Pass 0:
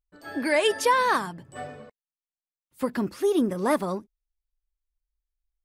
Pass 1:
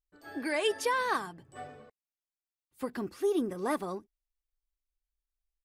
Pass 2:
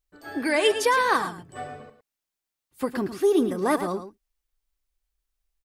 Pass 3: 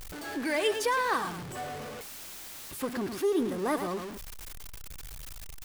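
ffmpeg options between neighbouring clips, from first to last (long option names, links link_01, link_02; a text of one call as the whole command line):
ffmpeg -i in.wav -af "aecho=1:1:2.6:0.3,volume=-7.5dB" out.wav
ffmpeg -i in.wav -af "aecho=1:1:110:0.282,volume=8dB" out.wav
ffmpeg -i in.wav -af "aeval=exprs='val(0)+0.5*0.0422*sgn(val(0))':channel_layout=same,volume=-8dB" out.wav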